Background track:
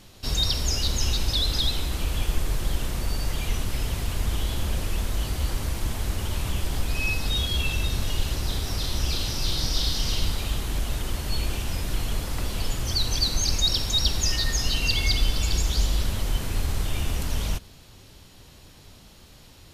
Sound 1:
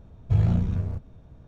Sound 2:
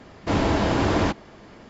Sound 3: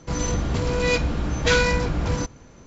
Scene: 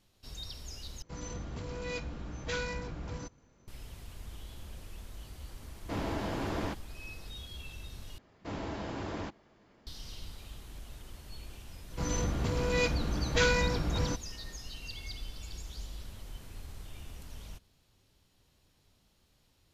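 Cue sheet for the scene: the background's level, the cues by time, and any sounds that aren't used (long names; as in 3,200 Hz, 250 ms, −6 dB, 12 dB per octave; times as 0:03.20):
background track −19.5 dB
0:01.02: overwrite with 3 −16.5 dB
0:05.62: mix in 2 −13.5 dB
0:08.18: overwrite with 2 −17 dB
0:11.90: mix in 3 −7.5 dB
not used: 1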